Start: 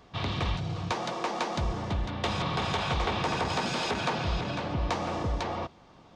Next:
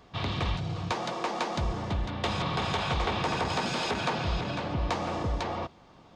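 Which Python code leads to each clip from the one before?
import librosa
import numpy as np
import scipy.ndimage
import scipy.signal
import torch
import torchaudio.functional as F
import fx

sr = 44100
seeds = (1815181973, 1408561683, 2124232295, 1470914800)

y = fx.notch(x, sr, hz=5800.0, q=29.0)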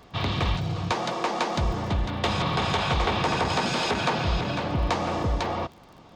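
y = fx.dmg_crackle(x, sr, seeds[0], per_s=47.0, level_db=-45.0)
y = F.gain(torch.from_numpy(y), 4.5).numpy()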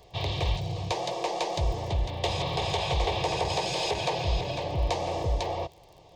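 y = fx.fixed_phaser(x, sr, hz=570.0, stages=4)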